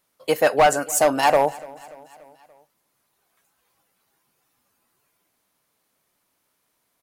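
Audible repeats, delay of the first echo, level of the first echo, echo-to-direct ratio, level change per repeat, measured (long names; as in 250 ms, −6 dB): 3, 290 ms, −22.0 dB, −20.5 dB, −5.0 dB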